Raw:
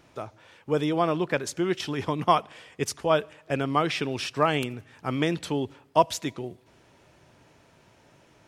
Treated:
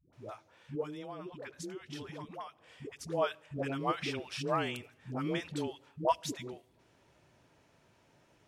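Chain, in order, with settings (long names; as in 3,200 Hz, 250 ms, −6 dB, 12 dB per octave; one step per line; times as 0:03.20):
0:00.74–0:02.97: downward compressor 10 to 1, threshold −31 dBFS, peak gain reduction 16.5 dB
all-pass dispersion highs, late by 131 ms, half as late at 440 Hz
level −8.5 dB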